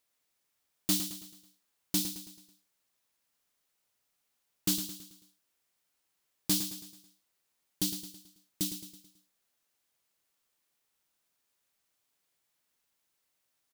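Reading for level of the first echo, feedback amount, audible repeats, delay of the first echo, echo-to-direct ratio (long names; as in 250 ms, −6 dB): −9.5 dB, 46%, 4, 109 ms, −8.5 dB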